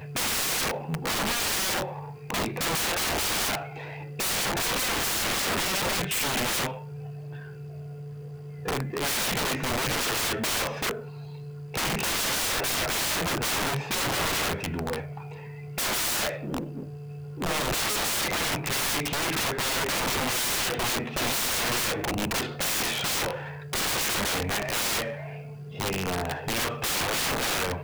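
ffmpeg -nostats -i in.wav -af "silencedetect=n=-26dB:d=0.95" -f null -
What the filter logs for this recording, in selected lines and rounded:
silence_start: 6.67
silence_end: 8.68 | silence_duration: 2.00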